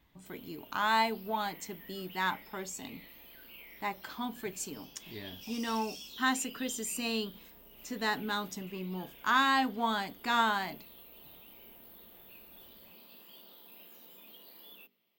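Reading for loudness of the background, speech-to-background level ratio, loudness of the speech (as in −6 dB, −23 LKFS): −50.0 LKFS, 17.0 dB, −33.0 LKFS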